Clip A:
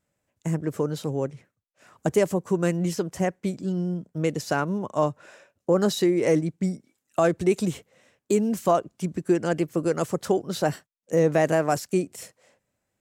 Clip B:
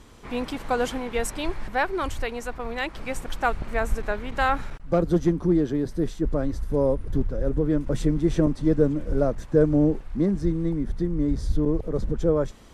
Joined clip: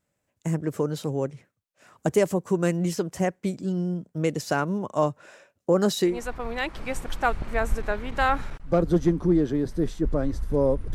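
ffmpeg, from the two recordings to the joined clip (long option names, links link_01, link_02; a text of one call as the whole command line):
ffmpeg -i cue0.wav -i cue1.wav -filter_complex "[0:a]apad=whole_dur=10.94,atrim=end=10.94,atrim=end=6.2,asetpts=PTS-STARTPTS[link_01];[1:a]atrim=start=2.24:end=7.14,asetpts=PTS-STARTPTS[link_02];[link_01][link_02]acrossfade=duration=0.16:curve1=tri:curve2=tri" out.wav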